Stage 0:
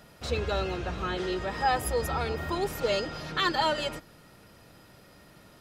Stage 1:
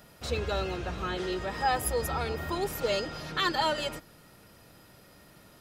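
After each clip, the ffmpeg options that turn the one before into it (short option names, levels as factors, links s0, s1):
-af "highshelf=f=10000:g=8,volume=0.841"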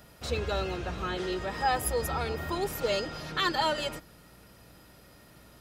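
-af "aeval=exprs='val(0)+0.000891*(sin(2*PI*60*n/s)+sin(2*PI*2*60*n/s)/2+sin(2*PI*3*60*n/s)/3+sin(2*PI*4*60*n/s)/4+sin(2*PI*5*60*n/s)/5)':c=same"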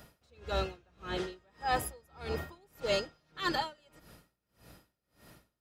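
-af "aeval=exprs='val(0)*pow(10,-33*(0.5-0.5*cos(2*PI*1.7*n/s))/20)':c=same"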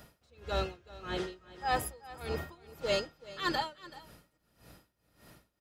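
-af "aecho=1:1:380:0.126"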